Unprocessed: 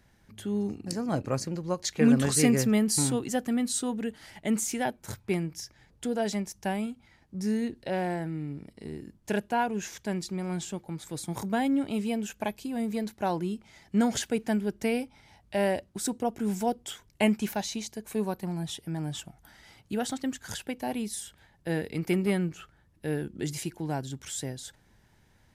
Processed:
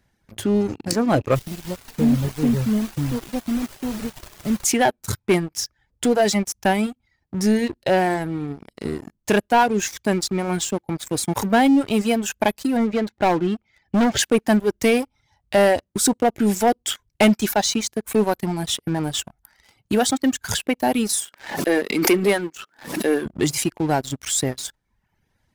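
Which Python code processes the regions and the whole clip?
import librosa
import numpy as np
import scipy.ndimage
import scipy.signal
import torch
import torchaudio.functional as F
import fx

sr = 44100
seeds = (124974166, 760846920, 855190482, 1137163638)

y = fx.bandpass_q(x, sr, hz=120.0, q=1.4, at=(1.34, 4.64), fade=0.02)
y = fx.dmg_noise_colour(y, sr, seeds[0], colour='pink', level_db=-48.0, at=(1.34, 4.64), fade=0.02)
y = fx.chain(y, sr, fx.lowpass(hz=3300.0, slope=12),
    fx.clip_hard(threshold_db=-26.0), at=(12.77, 14.19))
y = fx.chain(y, sr, fx.highpass(hz=230.0, slope=24),
    fx.pre_swell(db_per_s=71.0), at=(21.09, 23.26))
y = fx.dereverb_blind(y, sr, rt60_s=0.99)
y = fx.dynamic_eq(y, sr, hz=160.0, q=1.8, threshold_db=-44.0, ratio=4.0, max_db=-6)
y = fx.leveller(y, sr, passes=3)
y = F.gain(torch.from_numpy(y), 3.0).numpy()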